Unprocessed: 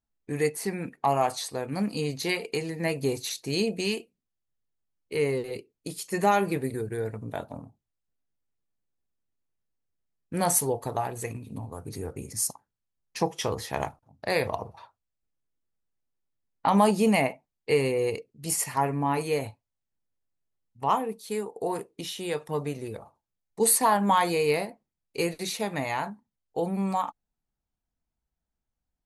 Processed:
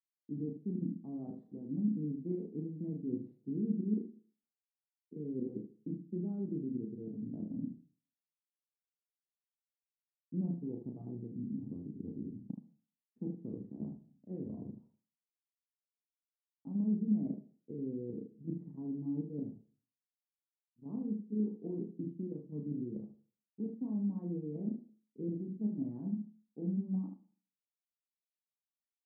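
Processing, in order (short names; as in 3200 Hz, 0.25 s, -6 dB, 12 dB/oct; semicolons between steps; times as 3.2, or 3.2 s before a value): expander -51 dBFS; tilt -4.5 dB/oct; level quantiser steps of 11 dB; sample leveller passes 1; reverse; compressor 6:1, threshold -31 dBFS, peak gain reduction 19.5 dB; reverse; Butterworth band-pass 240 Hz, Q 1.8; early reflections 33 ms -4 dB, 75 ms -7.5 dB; on a send at -17 dB: reverb RT60 0.40 s, pre-delay 72 ms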